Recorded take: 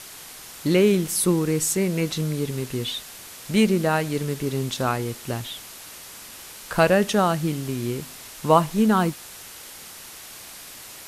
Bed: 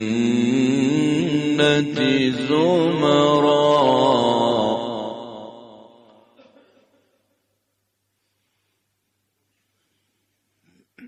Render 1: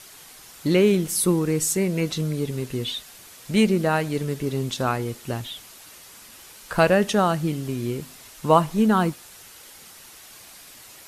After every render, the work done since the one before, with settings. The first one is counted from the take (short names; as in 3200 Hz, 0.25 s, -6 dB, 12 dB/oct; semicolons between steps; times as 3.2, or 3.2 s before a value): denoiser 6 dB, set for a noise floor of -42 dBFS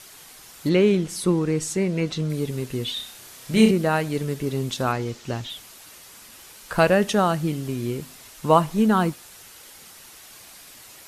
0.69–2.3 air absorption 63 m; 2.93–3.71 flutter echo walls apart 5.4 m, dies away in 0.4 s; 4.92–5.5 resonant high shelf 8000 Hz -8.5 dB, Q 1.5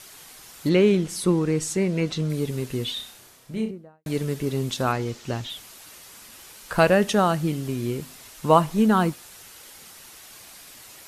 2.8–4.06 studio fade out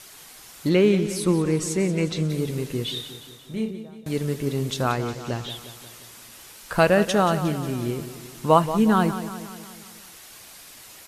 feedback echo 0.179 s, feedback 56%, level -12 dB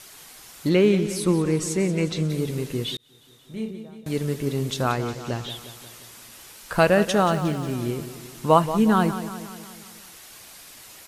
2.97–3.92 fade in; 7.23–7.71 median filter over 3 samples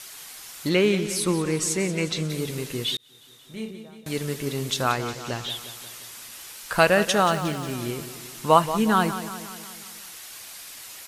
tilt shelf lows -4.5 dB, about 760 Hz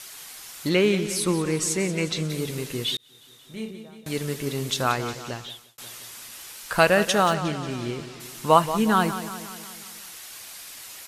5.13–5.78 fade out; 7.33–8.19 LPF 8000 Hz -> 4600 Hz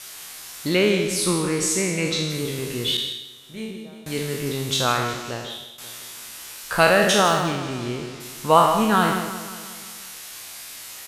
spectral trails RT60 0.89 s; on a send: echo 0.157 s -11.5 dB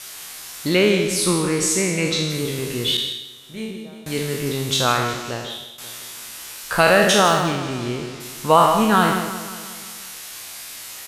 gain +2.5 dB; limiter -2 dBFS, peak gain reduction 3 dB